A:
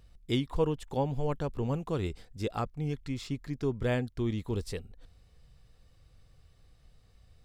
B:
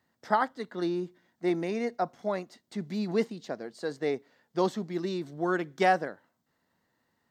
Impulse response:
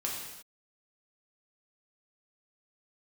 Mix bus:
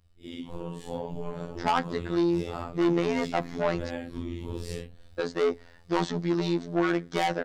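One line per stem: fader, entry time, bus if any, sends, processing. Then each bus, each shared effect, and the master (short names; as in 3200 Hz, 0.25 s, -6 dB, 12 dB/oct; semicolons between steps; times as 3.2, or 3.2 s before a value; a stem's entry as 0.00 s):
-5.0 dB, 0.00 s, no send, phase scrambler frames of 0.2 s; compressor 6:1, threshold -33 dBFS, peak gain reduction 9.5 dB
+1.0 dB, 1.35 s, muted 3.9–5.19, no send, LPF 6500 Hz 24 dB/oct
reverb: off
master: AGC gain up to 10.5 dB; soft clip -18.5 dBFS, distortion -8 dB; robotiser 85.6 Hz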